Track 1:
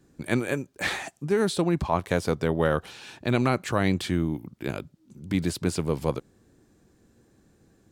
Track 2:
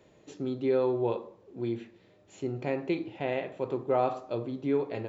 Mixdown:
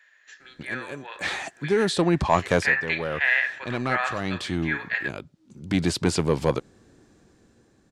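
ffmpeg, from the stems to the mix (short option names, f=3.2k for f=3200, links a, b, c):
-filter_complex "[0:a]lowpass=7.5k,asoftclip=type=tanh:threshold=-14dB,adelay=400,volume=-0.5dB[a];[1:a]highpass=f=1.7k:t=q:w=15,volume=0.5dB,asplit=2[b][c];[c]apad=whole_len=366668[d];[a][d]sidechaincompress=threshold=-42dB:ratio=4:attack=40:release=1070[e];[e][b]amix=inputs=2:normalize=0,lowshelf=f=400:g=-4.5,dynaudnorm=f=350:g=7:m=8.5dB"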